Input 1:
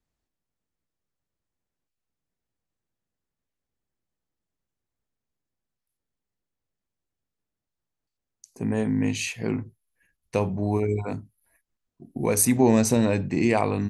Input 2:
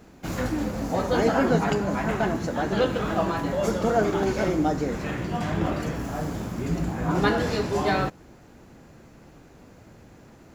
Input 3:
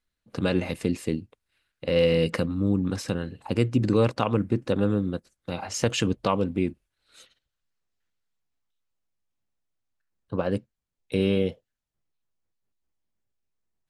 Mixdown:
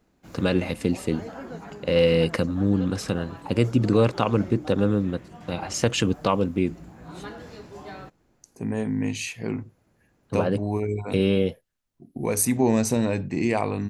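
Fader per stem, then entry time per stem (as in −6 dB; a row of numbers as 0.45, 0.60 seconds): −2.0, −16.5, +2.0 decibels; 0.00, 0.00, 0.00 seconds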